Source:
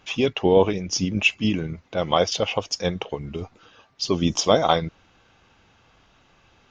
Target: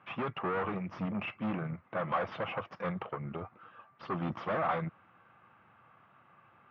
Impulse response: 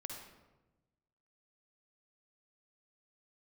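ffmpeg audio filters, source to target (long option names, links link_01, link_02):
-af "aeval=exprs='(tanh(28.2*val(0)+0.7)-tanh(0.7))/28.2':channel_layout=same,highpass=frequency=110:width=0.5412,highpass=frequency=110:width=1.3066,equalizer=frequency=280:width_type=q:width=4:gain=-6,equalizer=frequency=430:width_type=q:width=4:gain=-6,equalizer=frequency=1200:width_type=q:width=4:gain=9,lowpass=frequency=2200:width=0.5412,lowpass=frequency=2200:width=1.3066"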